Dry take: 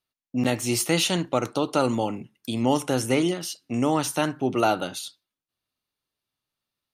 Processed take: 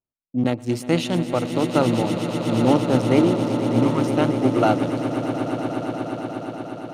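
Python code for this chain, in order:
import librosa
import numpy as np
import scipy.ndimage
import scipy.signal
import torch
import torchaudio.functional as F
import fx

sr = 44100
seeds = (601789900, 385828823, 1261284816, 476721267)

y = fx.wiener(x, sr, points=25)
y = fx.low_shelf(y, sr, hz=390.0, db=3.0)
y = fx.spec_erase(y, sr, start_s=3.84, length_s=0.3, low_hz=320.0, high_hz=870.0)
y = fx.high_shelf(y, sr, hz=4600.0, db=-10.5)
y = fx.echo_swell(y, sr, ms=119, loudest=8, wet_db=-11)
y = fx.upward_expand(y, sr, threshold_db=-30.0, expansion=1.5)
y = y * librosa.db_to_amplitude(3.5)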